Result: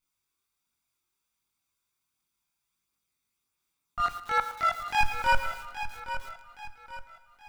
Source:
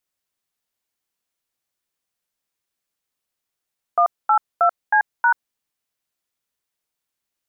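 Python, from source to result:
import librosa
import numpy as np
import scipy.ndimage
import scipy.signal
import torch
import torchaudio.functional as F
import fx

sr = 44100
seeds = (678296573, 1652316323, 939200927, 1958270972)

p1 = fx.lower_of_two(x, sr, delay_ms=0.83)
p2 = fx.highpass(p1, sr, hz=600.0, slope=6, at=(3.99, 4.99))
p3 = fx.level_steps(p2, sr, step_db=15)
p4 = p2 + (p3 * 10.0 ** (3.0 / 20.0))
p5 = fx.transient(p4, sr, attack_db=-10, sustain_db=10)
p6 = 10.0 ** (-9.0 / 20.0) * np.tanh(p5 / 10.0 ** (-9.0 / 20.0))
p7 = fx.chorus_voices(p6, sr, voices=2, hz=0.68, base_ms=22, depth_ms=1.4, mix_pct=55)
p8 = p7 + fx.echo_feedback(p7, sr, ms=821, feedback_pct=39, wet_db=-11.0, dry=0)
p9 = fx.rev_plate(p8, sr, seeds[0], rt60_s=1.5, hf_ratio=0.95, predelay_ms=0, drr_db=11.5)
y = fx.echo_crushed(p9, sr, ms=114, feedback_pct=35, bits=6, wet_db=-13.0)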